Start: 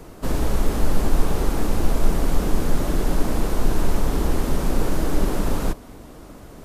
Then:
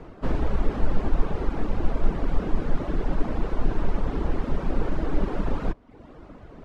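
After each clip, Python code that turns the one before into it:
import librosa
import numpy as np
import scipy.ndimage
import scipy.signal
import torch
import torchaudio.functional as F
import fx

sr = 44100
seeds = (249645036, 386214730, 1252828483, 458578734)

y = fx.dereverb_blind(x, sr, rt60_s=0.71)
y = scipy.signal.sosfilt(scipy.signal.butter(2, 2600.0, 'lowpass', fs=sr, output='sos'), y)
y = fx.rider(y, sr, range_db=10, speed_s=2.0)
y = F.gain(torch.from_numpy(y), -2.5).numpy()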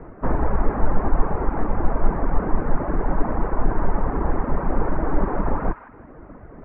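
y = scipy.signal.sosfilt(scipy.signal.butter(6, 2000.0, 'lowpass', fs=sr, output='sos'), x)
y = fx.dynamic_eq(y, sr, hz=920.0, q=1.3, threshold_db=-50.0, ratio=4.0, max_db=7)
y = fx.echo_wet_highpass(y, sr, ms=158, feedback_pct=37, hz=1500.0, wet_db=-6)
y = F.gain(torch.from_numpy(y), 3.0).numpy()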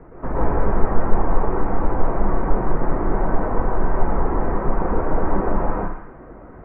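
y = fx.rev_plate(x, sr, seeds[0], rt60_s=0.57, hf_ratio=0.75, predelay_ms=105, drr_db=-5.5)
y = F.gain(torch.from_numpy(y), -4.5).numpy()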